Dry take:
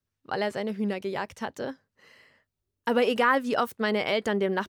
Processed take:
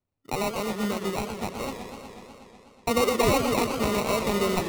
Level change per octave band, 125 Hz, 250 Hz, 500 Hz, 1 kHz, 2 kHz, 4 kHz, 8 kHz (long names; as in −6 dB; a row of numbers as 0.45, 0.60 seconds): +6.5, +2.0, +1.0, +0.5, −3.0, +2.5, +15.5 decibels